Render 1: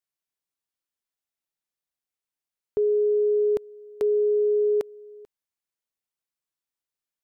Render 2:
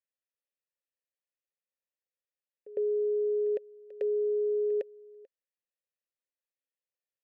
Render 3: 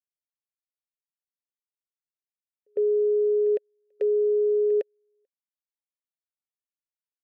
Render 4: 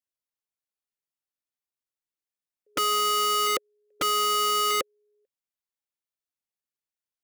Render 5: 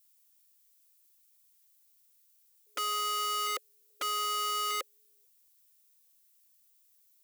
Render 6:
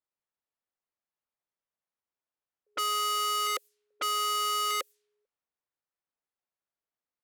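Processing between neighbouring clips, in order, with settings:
formant filter e; backwards echo 106 ms −18 dB; level +4.5 dB
expander for the loud parts 2.5 to 1, over −45 dBFS; level +7 dB
wrap-around overflow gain 21 dB
high-pass filter 550 Hz 12 dB per octave; background noise violet −59 dBFS; level −7.5 dB
low-pass that shuts in the quiet parts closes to 800 Hz, open at −33.5 dBFS; level +3 dB

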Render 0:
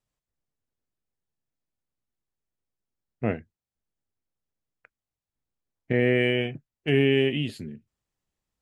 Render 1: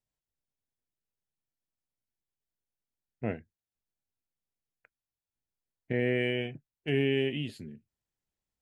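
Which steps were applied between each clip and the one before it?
notch filter 1,200 Hz, Q 6.9
level −6.5 dB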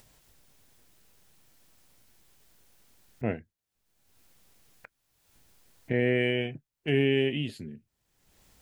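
upward compression, threshold −42 dBFS
level +3 dB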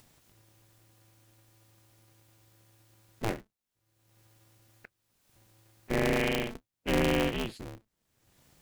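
ring modulator with a square carrier 110 Hz
level −2 dB

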